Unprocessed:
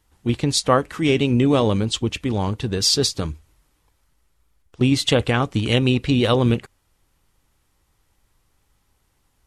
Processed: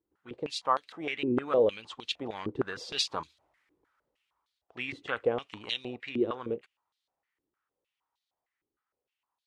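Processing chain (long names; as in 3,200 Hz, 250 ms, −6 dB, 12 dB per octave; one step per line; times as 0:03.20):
source passing by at 0:03.33, 7 m/s, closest 7.5 metres
band-pass on a step sequencer 6.5 Hz 350–3,900 Hz
level +6.5 dB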